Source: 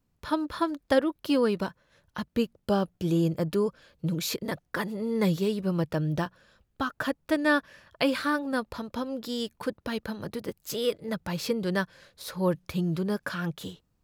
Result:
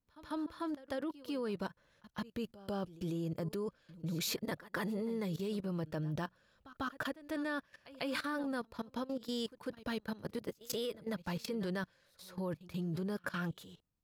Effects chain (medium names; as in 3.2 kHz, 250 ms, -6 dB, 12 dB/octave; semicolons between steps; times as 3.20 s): pre-echo 147 ms -20 dB; level held to a coarse grid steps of 17 dB; trim -2.5 dB